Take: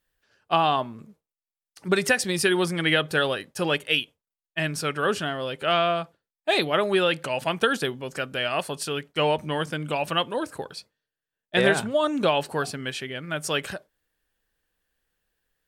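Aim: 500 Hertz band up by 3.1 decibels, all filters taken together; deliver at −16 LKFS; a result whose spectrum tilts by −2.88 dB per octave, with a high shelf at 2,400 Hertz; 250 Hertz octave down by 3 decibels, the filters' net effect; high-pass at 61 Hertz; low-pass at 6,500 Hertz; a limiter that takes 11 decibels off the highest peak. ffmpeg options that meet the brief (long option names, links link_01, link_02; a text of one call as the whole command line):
ffmpeg -i in.wav -af "highpass=61,lowpass=6500,equalizer=frequency=250:width_type=o:gain=-8.5,equalizer=frequency=500:width_type=o:gain=6.5,highshelf=frequency=2400:gain=-5.5,volume=12.5dB,alimiter=limit=-4.5dB:level=0:latency=1" out.wav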